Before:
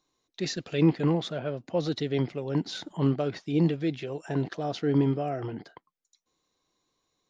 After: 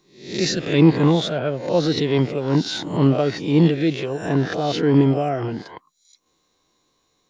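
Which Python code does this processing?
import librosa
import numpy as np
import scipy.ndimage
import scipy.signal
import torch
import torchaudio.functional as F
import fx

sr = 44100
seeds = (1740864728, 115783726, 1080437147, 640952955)

y = fx.spec_swells(x, sr, rise_s=0.52)
y = F.gain(torch.from_numpy(y), 8.0).numpy()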